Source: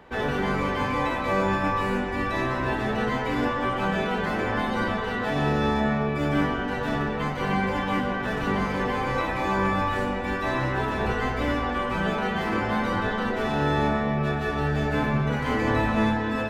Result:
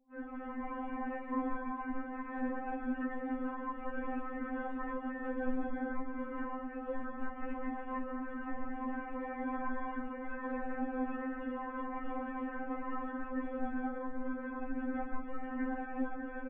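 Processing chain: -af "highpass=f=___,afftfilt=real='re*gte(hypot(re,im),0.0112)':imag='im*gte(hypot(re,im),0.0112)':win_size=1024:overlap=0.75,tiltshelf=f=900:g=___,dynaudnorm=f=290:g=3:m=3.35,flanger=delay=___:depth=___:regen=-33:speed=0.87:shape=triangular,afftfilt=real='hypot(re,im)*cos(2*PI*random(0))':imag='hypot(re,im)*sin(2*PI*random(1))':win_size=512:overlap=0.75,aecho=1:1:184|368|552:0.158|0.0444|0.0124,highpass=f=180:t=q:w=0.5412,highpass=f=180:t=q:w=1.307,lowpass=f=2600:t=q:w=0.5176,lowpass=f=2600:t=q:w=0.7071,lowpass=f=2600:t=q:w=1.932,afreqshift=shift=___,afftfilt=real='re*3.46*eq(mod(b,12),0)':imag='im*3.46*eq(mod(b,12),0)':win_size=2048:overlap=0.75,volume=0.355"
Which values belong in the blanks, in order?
90, 6, 6.2, 3.7, -160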